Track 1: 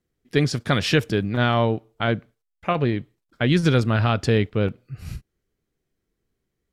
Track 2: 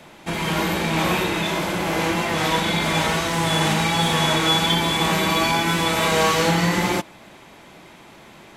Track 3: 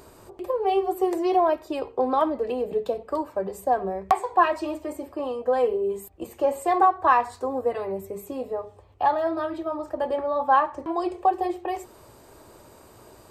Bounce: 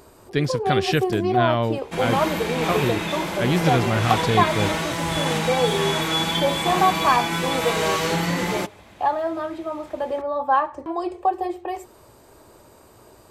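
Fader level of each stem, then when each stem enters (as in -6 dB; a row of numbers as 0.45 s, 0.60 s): -2.5 dB, -4.0 dB, 0.0 dB; 0.00 s, 1.65 s, 0.00 s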